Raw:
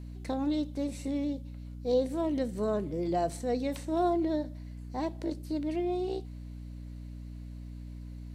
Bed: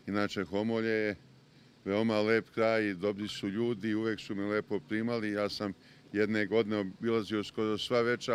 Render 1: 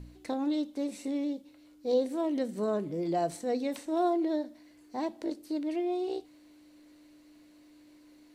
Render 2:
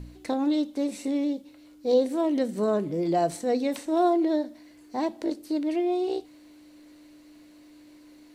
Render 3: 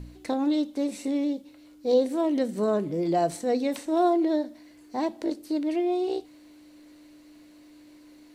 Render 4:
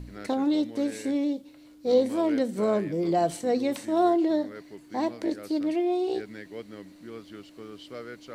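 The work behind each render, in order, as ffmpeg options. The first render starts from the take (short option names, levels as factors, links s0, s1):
-af "bandreject=f=60:t=h:w=4,bandreject=f=120:t=h:w=4,bandreject=f=180:t=h:w=4,bandreject=f=240:t=h:w=4"
-af "volume=1.88"
-af anull
-filter_complex "[1:a]volume=0.266[s0];[0:a][s0]amix=inputs=2:normalize=0"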